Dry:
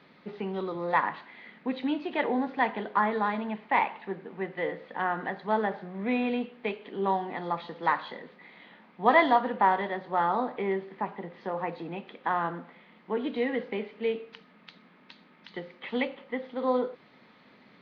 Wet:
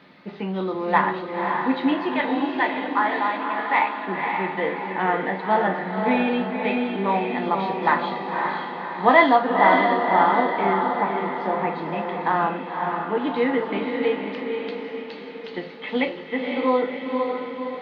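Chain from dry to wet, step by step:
0:02.13–0:03.99: high-pass filter 970 Hz 6 dB per octave
feedback delay with all-pass diffusion 537 ms, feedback 53%, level −3.5 dB
convolution reverb, pre-delay 3 ms, DRR 4 dB
level +5 dB

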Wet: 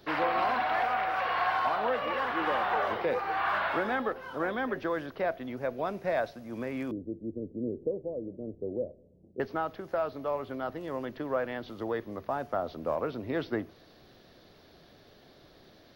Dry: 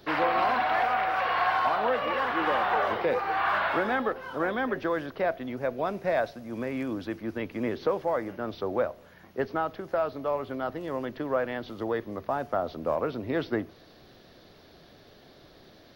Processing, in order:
0:06.91–0:09.40: Butterworth low-pass 520 Hz 36 dB per octave
level −3 dB

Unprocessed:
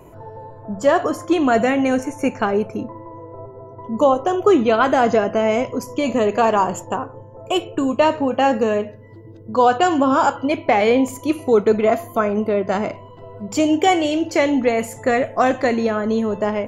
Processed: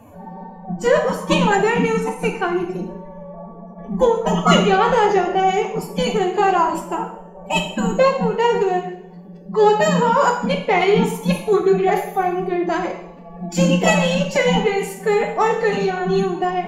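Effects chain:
phase-vocoder pitch shift with formants kept +9.5 semitones
coupled-rooms reverb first 0.63 s, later 1.6 s, from −26 dB, DRR 2.5 dB
level −1 dB

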